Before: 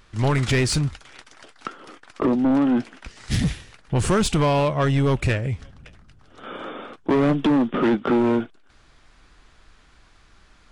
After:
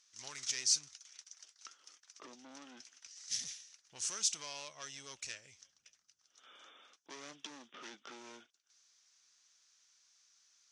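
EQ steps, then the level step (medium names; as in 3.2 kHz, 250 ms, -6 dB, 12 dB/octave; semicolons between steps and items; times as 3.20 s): band-pass filter 6 kHz, Q 6; +4.0 dB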